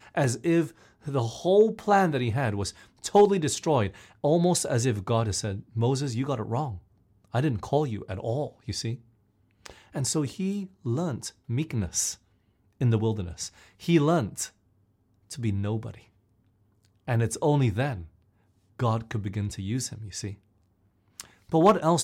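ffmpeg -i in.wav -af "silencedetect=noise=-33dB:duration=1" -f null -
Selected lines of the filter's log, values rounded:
silence_start: 15.91
silence_end: 17.08 | silence_duration: 1.18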